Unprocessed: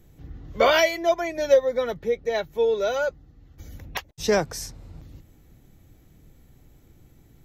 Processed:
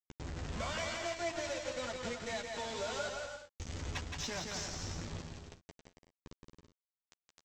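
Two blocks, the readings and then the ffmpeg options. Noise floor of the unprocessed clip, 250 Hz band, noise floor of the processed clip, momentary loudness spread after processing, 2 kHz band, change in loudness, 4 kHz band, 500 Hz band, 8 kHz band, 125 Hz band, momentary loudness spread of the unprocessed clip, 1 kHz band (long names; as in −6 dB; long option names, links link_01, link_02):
−55 dBFS, −11.0 dB, below −85 dBFS, 15 LU, −12.5 dB, −16.5 dB, −9.5 dB, −19.0 dB, −5.5 dB, −3.0 dB, 16 LU, −14.0 dB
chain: -filter_complex "[0:a]equalizer=frequency=440:width_type=o:width=0.64:gain=-14.5,bandreject=frequency=56.22:width_type=h:width=4,bandreject=frequency=112.44:width_type=h:width=4,bandreject=frequency=168.66:width_type=h:width=4,acompressor=threshold=-37dB:ratio=8,aeval=exprs='val(0)+0.00178*(sin(2*PI*50*n/s)+sin(2*PI*2*50*n/s)/2+sin(2*PI*3*50*n/s)/3+sin(2*PI*4*50*n/s)/4+sin(2*PI*5*50*n/s)/5)':channel_layout=same,aresample=16000,acrusher=bits=6:mix=0:aa=0.000001,aresample=44100,asoftclip=type=tanh:threshold=-29dB,asplit=2[link_01][link_02];[link_02]adelay=12,volume=-6dB[link_03];[link_01][link_03]amix=inputs=2:normalize=0,aecho=1:1:170|272|333.2|369.9|392:0.631|0.398|0.251|0.158|0.1,volume=-1.5dB"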